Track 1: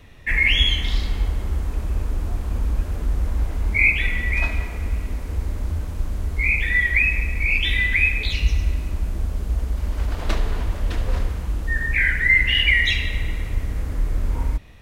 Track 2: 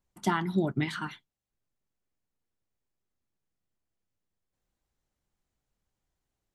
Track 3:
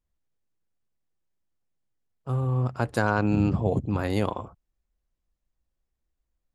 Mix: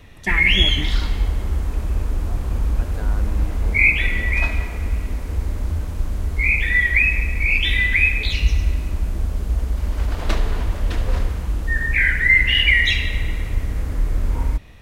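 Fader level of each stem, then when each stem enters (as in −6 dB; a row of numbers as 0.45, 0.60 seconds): +2.0, −1.5, −13.5 decibels; 0.00, 0.00, 0.00 seconds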